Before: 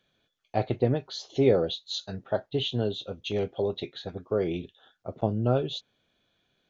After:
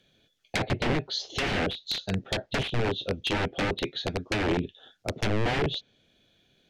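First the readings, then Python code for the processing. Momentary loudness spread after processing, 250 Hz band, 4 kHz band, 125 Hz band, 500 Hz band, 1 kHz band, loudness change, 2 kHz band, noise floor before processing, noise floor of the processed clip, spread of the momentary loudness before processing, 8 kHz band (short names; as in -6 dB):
5 LU, -0.5 dB, +4.0 dB, -0.5 dB, -4.5 dB, +3.5 dB, -0.5 dB, +13.0 dB, -75 dBFS, -69 dBFS, 12 LU, n/a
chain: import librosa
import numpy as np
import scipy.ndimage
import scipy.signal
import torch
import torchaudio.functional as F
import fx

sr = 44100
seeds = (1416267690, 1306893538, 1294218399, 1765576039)

y = (np.mod(10.0 ** (25.0 / 20.0) * x + 1.0, 2.0) - 1.0) / 10.0 ** (25.0 / 20.0)
y = fx.env_lowpass_down(y, sr, base_hz=2100.0, full_db=-28.5)
y = fx.peak_eq(y, sr, hz=1100.0, db=-10.0, octaves=1.1)
y = y * librosa.db_to_amplitude(8.5)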